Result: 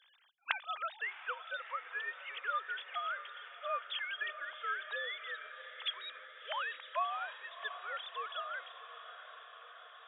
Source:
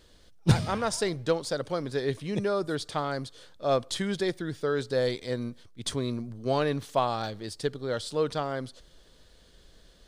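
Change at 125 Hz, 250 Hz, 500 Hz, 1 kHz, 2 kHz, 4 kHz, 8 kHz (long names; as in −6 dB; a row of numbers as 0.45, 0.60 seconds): below −40 dB, below −40 dB, −20.5 dB, −5.5 dB, +1.0 dB, −5.0 dB, below −40 dB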